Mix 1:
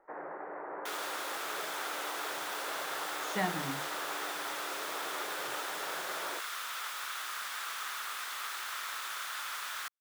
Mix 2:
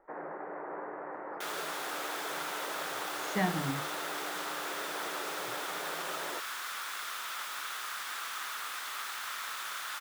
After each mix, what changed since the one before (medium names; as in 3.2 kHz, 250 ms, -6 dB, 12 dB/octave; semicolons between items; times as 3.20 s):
second sound: entry +0.55 s; master: add bass shelf 210 Hz +10 dB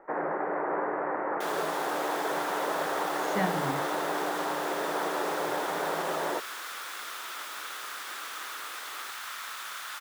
first sound +10.5 dB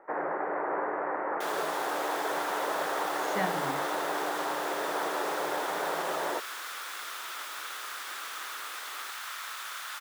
master: add bass shelf 210 Hz -10 dB